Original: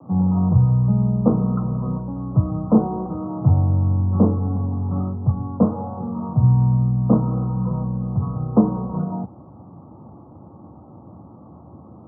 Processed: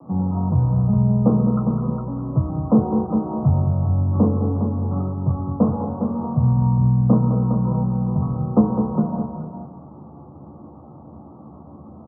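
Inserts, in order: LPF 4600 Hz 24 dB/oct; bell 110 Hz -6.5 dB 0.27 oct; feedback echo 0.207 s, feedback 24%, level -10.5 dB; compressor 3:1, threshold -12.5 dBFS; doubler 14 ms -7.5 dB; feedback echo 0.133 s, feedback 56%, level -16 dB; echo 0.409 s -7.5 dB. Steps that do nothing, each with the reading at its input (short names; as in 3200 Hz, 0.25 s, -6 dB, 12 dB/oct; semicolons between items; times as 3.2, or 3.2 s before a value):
LPF 4600 Hz: input band ends at 960 Hz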